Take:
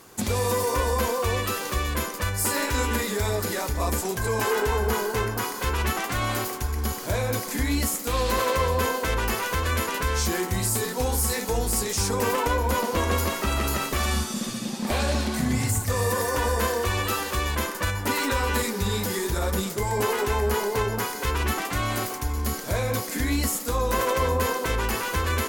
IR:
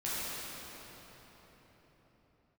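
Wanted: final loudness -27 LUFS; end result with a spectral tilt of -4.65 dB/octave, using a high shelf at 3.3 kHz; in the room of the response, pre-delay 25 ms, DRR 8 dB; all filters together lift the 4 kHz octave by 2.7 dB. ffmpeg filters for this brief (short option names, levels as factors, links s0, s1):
-filter_complex "[0:a]highshelf=f=3300:g=-5,equalizer=f=4000:t=o:g=7,asplit=2[s0][s1];[1:a]atrim=start_sample=2205,adelay=25[s2];[s1][s2]afir=irnorm=-1:irlink=0,volume=0.188[s3];[s0][s3]amix=inputs=2:normalize=0,volume=0.794"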